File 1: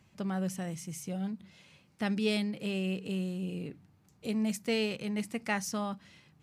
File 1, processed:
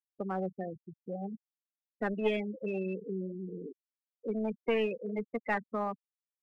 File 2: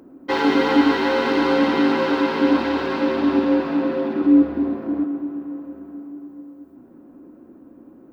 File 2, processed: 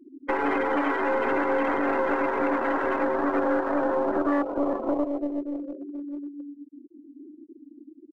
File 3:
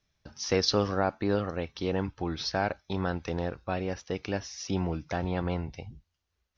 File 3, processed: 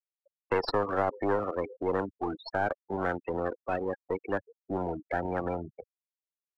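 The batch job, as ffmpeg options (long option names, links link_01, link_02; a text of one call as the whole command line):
ffmpeg -i in.wav -filter_complex "[0:a]aeval=exprs='0.596*(cos(1*acos(clip(val(0)/0.596,-1,1)))-cos(1*PI/2))+0.188*(cos(2*acos(clip(val(0)/0.596,-1,1)))-cos(2*PI/2))+0.0668*(cos(5*acos(clip(val(0)/0.596,-1,1)))-cos(5*PI/2))+0.0335*(cos(7*acos(clip(val(0)/0.596,-1,1)))-cos(7*PI/2))+0.106*(cos(8*acos(clip(val(0)/0.596,-1,1)))-cos(8*PI/2))':channel_layout=same,acrossover=split=290 2600:gain=0.178 1 0.178[link_01][link_02][link_03];[link_01][link_02][link_03]amix=inputs=3:normalize=0,aecho=1:1:371|742|1113:0.1|0.041|0.0168,acrossover=split=330[link_04][link_05];[link_04]acompressor=threshold=-35dB:ratio=8[link_06];[link_05]alimiter=limit=-20dB:level=0:latency=1:release=132[link_07];[link_06][link_07]amix=inputs=2:normalize=0,afftfilt=real='re*gte(hypot(re,im),0.0282)':imag='im*gte(hypot(re,im),0.0282)':win_size=1024:overlap=0.75,asplit=2[link_08][link_09];[link_09]aeval=exprs='clip(val(0),-1,0.0168)':channel_layout=same,volume=-6dB[link_10];[link_08][link_10]amix=inputs=2:normalize=0" out.wav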